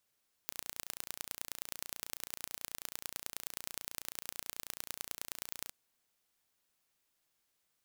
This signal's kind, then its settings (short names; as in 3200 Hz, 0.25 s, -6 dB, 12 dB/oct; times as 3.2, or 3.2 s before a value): pulse train 29.2/s, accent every 3, -10.5 dBFS 5.21 s